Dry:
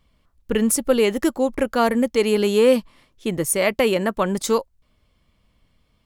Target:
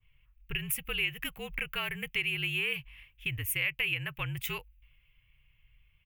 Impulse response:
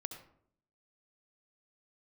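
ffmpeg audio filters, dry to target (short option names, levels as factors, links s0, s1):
-af "afreqshift=-53,firequalizer=gain_entry='entry(130,0);entry(190,-21);entry(700,-18);entry(2600,8);entry(4200,-23);entry(7800,-21);entry(15000,4)':delay=0.05:min_phase=1,acompressor=threshold=0.0178:ratio=3,adynamicequalizer=threshold=0.002:dfrequency=1600:dqfactor=0.7:tfrequency=1600:tqfactor=0.7:attack=5:release=100:ratio=0.375:range=3.5:mode=boostabove:tftype=highshelf,volume=0.891"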